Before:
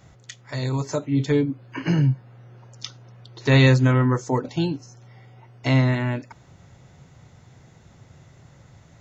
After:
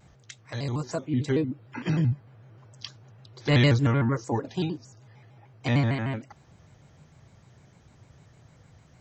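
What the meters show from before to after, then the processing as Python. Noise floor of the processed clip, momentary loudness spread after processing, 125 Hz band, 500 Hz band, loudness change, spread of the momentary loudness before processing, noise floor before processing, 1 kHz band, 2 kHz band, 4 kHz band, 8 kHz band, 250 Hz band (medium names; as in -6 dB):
-58 dBFS, 18 LU, -5.0 dB, -5.5 dB, -5.0 dB, 18 LU, -53 dBFS, -4.5 dB, -5.5 dB, -3.5 dB, no reading, -5.0 dB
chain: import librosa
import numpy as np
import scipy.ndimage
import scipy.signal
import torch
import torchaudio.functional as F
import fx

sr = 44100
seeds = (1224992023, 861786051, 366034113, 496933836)

y = fx.vibrato_shape(x, sr, shape='square', rate_hz=6.6, depth_cents=160.0)
y = y * 10.0 ** (-5.0 / 20.0)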